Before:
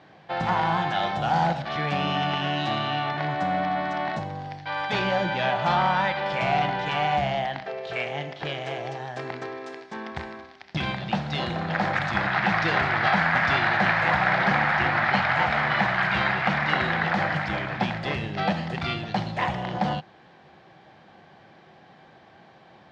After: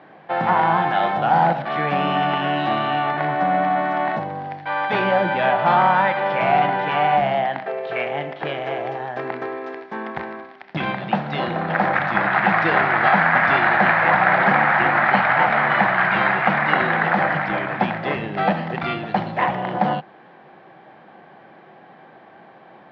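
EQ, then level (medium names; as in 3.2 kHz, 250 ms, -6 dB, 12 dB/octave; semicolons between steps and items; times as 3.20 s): band-pass 200–2100 Hz; +7.0 dB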